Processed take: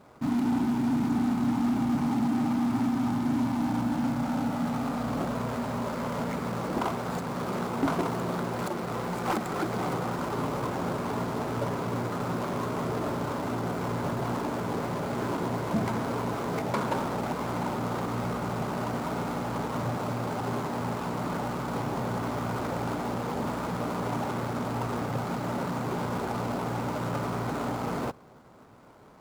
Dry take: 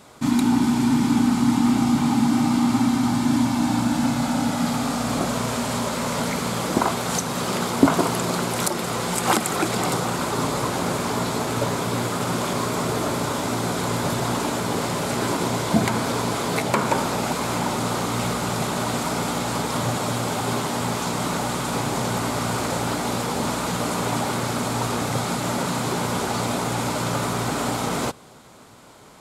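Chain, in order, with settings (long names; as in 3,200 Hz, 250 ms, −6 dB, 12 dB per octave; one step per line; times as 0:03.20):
running median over 15 samples
soft clipping −16 dBFS, distortion −15 dB
level −4.5 dB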